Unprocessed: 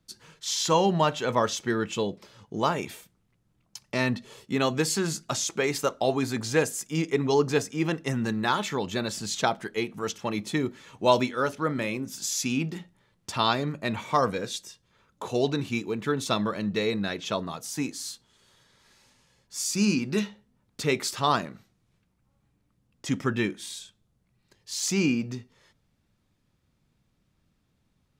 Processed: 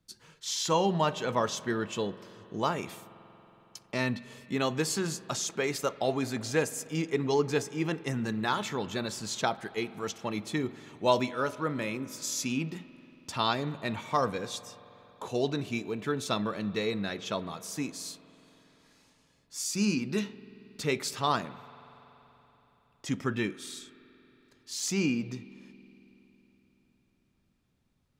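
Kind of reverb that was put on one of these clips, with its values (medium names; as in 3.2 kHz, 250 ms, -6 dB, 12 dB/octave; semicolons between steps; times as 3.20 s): spring tank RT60 3.8 s, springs 46 ms, chirp 25 ms, DRR 16.5 dB; trim -4 dB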